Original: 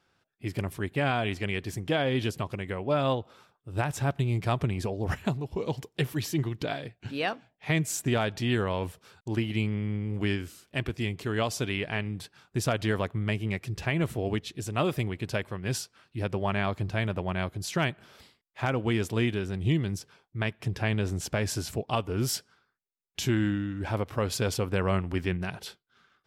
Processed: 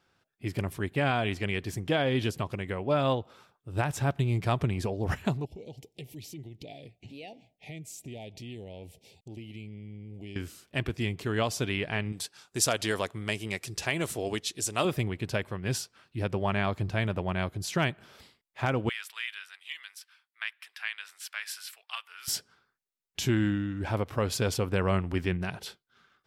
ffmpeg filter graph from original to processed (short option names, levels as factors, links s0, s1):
-filter_complex "[0:a]asettb=1/sr,asplit=3[s0][s1][s2];[s0]atrim=end=5.454[s3];[s1]atrim=start=5.45:end=10.36,asetpts=PTS-STARTPTS,afade=t=in:d=0.004:c=qsin,afade=t=out:st=4.906:d=0.004:c=qsin,asuperstop=centerf=1300:order=8:qfactor=1,acompressor=threshold=0.00447:ratio=2.5:attack=3.2:release=140:knee=1:detection=peak[s4];[s2]atrim=start=10.356[s5];[s3][s4]acrossfade=d=0.004:c1=hsin:c2=qsin[s6];[s6][s5]acrossfade=d=0.004:c1=qsin:c2=hsin,asettb=1/sr,asplit=3[s7][s8][s9];[s7]atrim=end=12.124[s10];[s8]atrim=start=12.12:end=14.85,asetpts=PTS-STARTPTS,afade=t=in:d=0.004:c=qsin,afade=t=out:st=2.726:d=0.004:c=qsin,lowpass=11000,bass=f=250:g=-9,treble=f=4000:g=13[s11];[s9]atrim=start=14.846[s12];[s10][s11]acrossfade=d=0.004:c1=hsin:c2=qsin[s13];[s13][s12]acrossfade=d=0.004:c1=qsin:c2=hsin,asettb=1/sr,asplit=3[s14][s15][s16];[s14]atrim=end=18.894[s17];[s15]atrim=start=18.89:end=22.28,asetpts=PTS-STARTPTS,afade=t=in:d=0.004:c=qsin,afade=t=out:st=3.386:d=0.004:c=qsin,highpass=f=1400:w=0.5412,highpass=f=1400:w=1.3066,equalizer=f=6600:t=o:w=0.62:g=-9[s18];[s16]atrim=start=22.276[s19];[s17][s18]acrossfade=d=0.004:c1=hsin:c2=qsin[s20];[s20][s19]acrossfade=d=0.004:c1=qsin:c2=hsin"